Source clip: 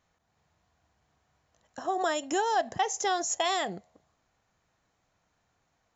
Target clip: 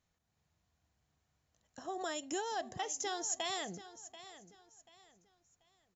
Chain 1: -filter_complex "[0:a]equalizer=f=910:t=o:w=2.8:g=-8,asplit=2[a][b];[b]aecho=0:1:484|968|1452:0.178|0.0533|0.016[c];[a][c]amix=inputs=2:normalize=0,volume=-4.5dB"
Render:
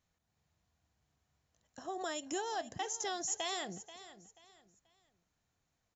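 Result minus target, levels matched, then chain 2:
echo 0.252 s early
-filter_complex "[0:a]equalizer=f=910:t=o:w=2.8:g=-8,asplit=2[a][b];[b]aecho=0:1:736|1472|2208:0.178|0.0533|0.016[c];[a][c]amix=inputs=2:normalize=0,volume=-4.5dB"

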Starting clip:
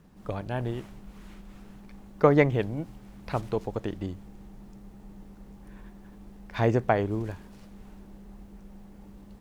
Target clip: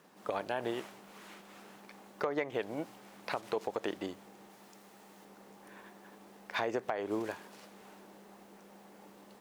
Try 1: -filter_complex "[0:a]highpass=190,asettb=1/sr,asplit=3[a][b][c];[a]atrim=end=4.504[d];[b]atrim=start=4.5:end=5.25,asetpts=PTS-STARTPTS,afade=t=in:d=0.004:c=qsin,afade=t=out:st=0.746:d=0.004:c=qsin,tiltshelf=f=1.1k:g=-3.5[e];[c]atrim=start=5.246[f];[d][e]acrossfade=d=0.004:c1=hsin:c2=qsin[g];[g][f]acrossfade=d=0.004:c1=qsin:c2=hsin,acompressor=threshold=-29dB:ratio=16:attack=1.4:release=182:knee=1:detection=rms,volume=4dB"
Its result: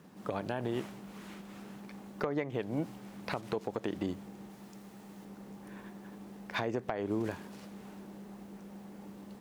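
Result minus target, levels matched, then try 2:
250 Hz band +6.5 dB
-filter_complex "[0:a]highpass=450,asettb=1/sr,asplit=3[a][b][c];[a]atrim=end=4.504[d];[b]atrim=start=4.5:end=5.25,asetpts=PTS-STARTPTS,afade=t=in:d=0.004:c=qsin,afade=t=out:st=0.746:d=0.004:c=qsin,tiltshelf=f=1.1k:g=-3.5[e];[c]atrim=start=5.246[f];[d][e]acrossfade=d=0.004:c1=hsin:c2=qsin[g];[g][f]acrossfade=d=0.004:c1=qsin:c2=hsin,acompressor=threshold=-29dB:ratio=16:attack=1.4:release=182:knee=1:detection=rms,volume=4dB"

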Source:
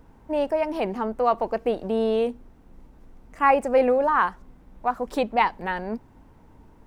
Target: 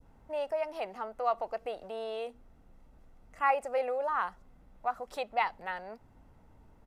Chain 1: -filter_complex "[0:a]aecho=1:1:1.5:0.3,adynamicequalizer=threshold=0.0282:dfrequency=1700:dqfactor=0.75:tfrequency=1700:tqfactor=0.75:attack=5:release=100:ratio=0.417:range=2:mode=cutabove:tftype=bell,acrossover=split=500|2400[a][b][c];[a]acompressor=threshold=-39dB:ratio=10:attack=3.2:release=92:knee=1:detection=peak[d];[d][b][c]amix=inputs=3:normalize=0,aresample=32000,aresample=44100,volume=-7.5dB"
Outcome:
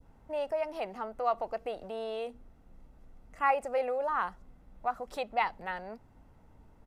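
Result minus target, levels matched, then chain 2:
compressor: peak gain reduction -6 dB
-filter_complex "[0:a]aecho=1:1:1.5:0.3,adynamicequalizer=threshold=0.0282:dfrequency=1700:dqfactor=0.75:tfrequency=1700:tqfactor=0.75:attack=5:release=100:ratio=0.417:range=2:mode=cutabove:tftype=bell,acrossover=split=500|2400[a][b][c];[a]acompressor=threshold=-45.5dB:ratio=10:attack=3.2:release=92:knee=1:detection=peak[d];[d][b][c]amix=inputs=3:normalize=0,aresample=32000,aresample=44100,volume=-7.5dB"

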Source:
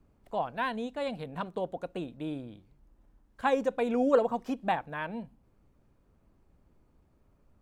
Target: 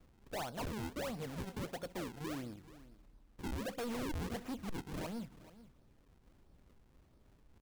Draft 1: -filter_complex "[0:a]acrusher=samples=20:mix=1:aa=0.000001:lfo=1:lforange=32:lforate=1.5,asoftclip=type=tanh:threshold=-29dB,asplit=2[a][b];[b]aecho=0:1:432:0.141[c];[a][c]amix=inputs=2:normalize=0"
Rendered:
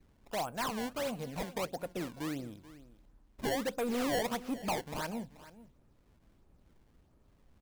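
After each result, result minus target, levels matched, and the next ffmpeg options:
decimation with a swept rate: distortion -10 dB; soft clip: distortion -4 dB
-filter_complex "[0:a]acrusher=samples=43:mix=1:aa=0.000001:lfo=1:lforange=68.8:lforate=1.5,asoftclip=type=tanh:threshold=-29dB,asplit=2[a][b];[b]aecho=0:1:432:0.141[c];[a][c]amix=inputs=2:normalize=0"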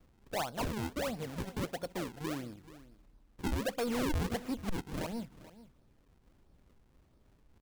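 soft clip: distortion -4 dB
-filter_complex "[0:a]acrusher=samples=43:mix=1:aa=0.000001:lfo=1:lforange=68.8:lforate=1.5,asoftclip=type=tanh:threshold=-37.5dB,asplit=2[a][b];[b]aecho=0:1:432:0.141[c];[a][c]amix=inputs=2:normalize=0"

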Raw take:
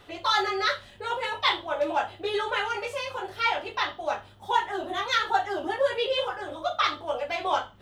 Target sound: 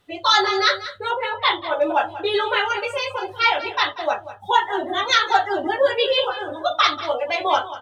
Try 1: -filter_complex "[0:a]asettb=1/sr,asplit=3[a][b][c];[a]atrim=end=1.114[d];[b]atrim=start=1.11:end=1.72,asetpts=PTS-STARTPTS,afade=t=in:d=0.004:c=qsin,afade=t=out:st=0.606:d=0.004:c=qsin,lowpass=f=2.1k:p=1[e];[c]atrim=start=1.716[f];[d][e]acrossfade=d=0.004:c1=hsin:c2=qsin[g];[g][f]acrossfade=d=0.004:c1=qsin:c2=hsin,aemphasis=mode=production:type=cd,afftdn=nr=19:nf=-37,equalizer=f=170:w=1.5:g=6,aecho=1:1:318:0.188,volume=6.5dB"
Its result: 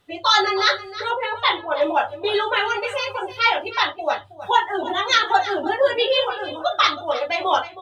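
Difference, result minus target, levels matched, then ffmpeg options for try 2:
echo 0.129 s late
-filter_complex "[0:a]asettb=1/sr,asplit=3[a][b][c];[a]atrim=end=1.114[d];[b]atrim=start=1.11:end=1.72,asetpts=PTS-STARTPTS,afade=t=in:d=0.004:c=qsin,afade=t=out:st=0.606:d=0.004:c=qsin,lowpass=f=2.1k:p=1[e];[c]atrim=start=1.716[f];[d][e]acrossfade=d=0.004:c1=hsin:c2=qsin[g];[g][f]acrossfade=d=0.004:c1=qsin:c2=hsin,aemphasis=mode=production:type=cd,afftdn=nr=19:nf=-37,equalizer=f=170:w=1.5:g=6,aecho=1:1:189:0.188,volume=6.5dB"

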